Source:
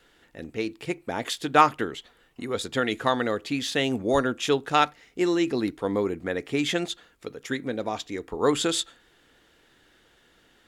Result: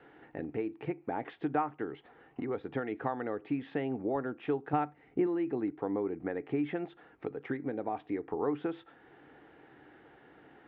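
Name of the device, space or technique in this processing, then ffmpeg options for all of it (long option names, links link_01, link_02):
bass amplifier: -filter_complex "[0:a]acrossover=split=3300[link_01][link_02];[link_02]acompressor=threshold=-45dB:ratio=4:attack=1:release=60[link_03];[link_01][link_03]amix=inputs=2:normalize=0,acompressor=threshold=-42dB:ratio=3,highpass=79,equalizer=frequency=140:width_type=q:width=4:gain=6,equalizer=frequency=300:width_type=q:width=4:gain=8,equalizer=frequency=420:width_type=q:width=4:gain=5,equalizer=frequency=790:width_type=q:width=4:gain=10,lowpass=frequency=2300:width=0.5412,lowpass=frequency=2300:width=1.3066,asettb=1/sr,asplit=3[link_04][link_05][link_06];[link_04]atrim=end=4.734[link_07];[link_05]atrim=start=4.73:end=5.27,asetpts=PTS-STARTPTS,afade=type=in:duration=0.004:curve=qsin,afade=type=out:start_time=0.536:duration=0.004:curve=qsin,lowshelf=frequency=290:gain=9[link_08];[link_06]atrim=start=5.266[link_09];[link_07][link_08]acrossfade=duration=0.004:curve1=hsin:curve2=qsin[link_10];[link_10][link_09]acrossfade=duration=0.004:curve1=qsin:curve2=hsin,volume=1.5dB"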